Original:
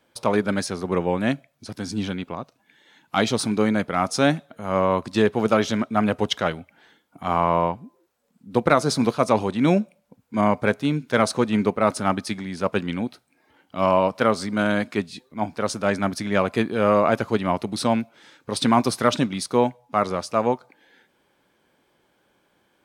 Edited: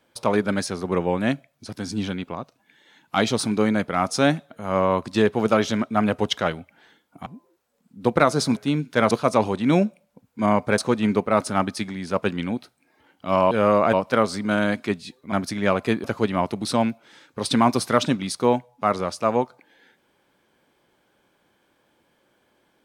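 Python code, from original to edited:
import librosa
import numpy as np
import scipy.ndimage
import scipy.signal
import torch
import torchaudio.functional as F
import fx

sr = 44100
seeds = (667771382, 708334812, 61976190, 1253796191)

y = fx.edit(x, sr, fx.cut(start_s=7.26, length_s=0.5),
    fx.move(start_s=10.73, length_s=0.55, to_s=9.06),
    fx.cut(start_s=15.4, length_s=0.61),
    fx.move(start_s=16.73, length_s=0.42, to_s=14.01), tone=tone)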